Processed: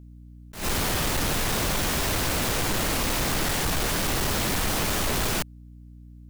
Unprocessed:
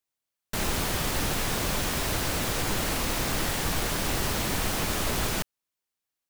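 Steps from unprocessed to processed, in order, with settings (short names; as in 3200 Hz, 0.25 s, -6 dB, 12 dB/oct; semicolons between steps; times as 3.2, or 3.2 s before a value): hum 60 Hz, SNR 23 dB; soft clip -27.5 dBFS, distortion -11 dB; attack slew limiter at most 140 dB/s; gain +6.5 dB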